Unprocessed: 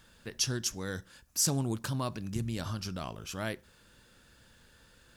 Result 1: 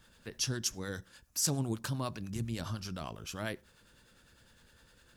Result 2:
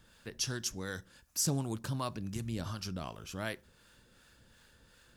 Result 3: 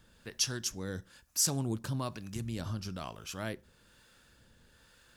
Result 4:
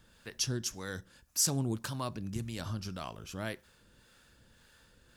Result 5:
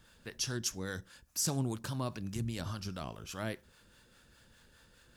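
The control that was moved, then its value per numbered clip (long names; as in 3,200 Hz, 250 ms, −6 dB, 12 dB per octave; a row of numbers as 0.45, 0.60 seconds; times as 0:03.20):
two-band tremolo in antiphase, speed: 9.9, 2.7, 1.1, 1.8, 4.9 Hertz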